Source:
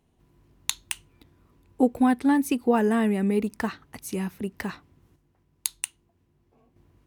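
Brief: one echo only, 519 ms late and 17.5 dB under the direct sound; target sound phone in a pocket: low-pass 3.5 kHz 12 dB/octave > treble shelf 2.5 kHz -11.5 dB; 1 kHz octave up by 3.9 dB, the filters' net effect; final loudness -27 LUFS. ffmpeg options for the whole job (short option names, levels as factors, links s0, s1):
-af "lowpass=3500,equalizer=f=1000:t=o:g=7,highshelf=f=2500:g=-11.5,aecho=1:1:519:0.133,volume=0.75"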